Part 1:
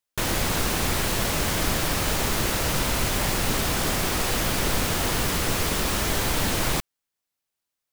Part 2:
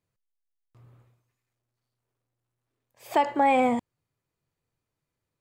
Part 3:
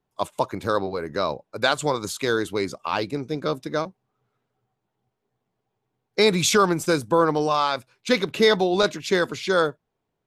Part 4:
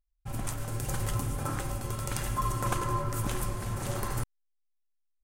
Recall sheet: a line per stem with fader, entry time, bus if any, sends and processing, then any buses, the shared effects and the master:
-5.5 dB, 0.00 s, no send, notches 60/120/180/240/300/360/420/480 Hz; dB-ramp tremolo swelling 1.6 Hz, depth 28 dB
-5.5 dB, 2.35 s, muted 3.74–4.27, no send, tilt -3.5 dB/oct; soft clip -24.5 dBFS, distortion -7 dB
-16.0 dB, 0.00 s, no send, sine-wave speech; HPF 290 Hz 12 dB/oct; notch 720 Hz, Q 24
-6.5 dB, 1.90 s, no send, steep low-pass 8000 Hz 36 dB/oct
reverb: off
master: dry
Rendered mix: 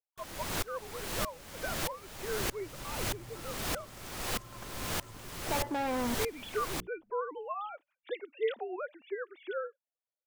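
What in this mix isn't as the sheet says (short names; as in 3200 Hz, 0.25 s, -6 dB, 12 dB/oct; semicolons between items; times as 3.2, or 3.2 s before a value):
stem 4 -6.5 dB -> -18.0 dB; master: extra low shelf 170 Hz -3 dB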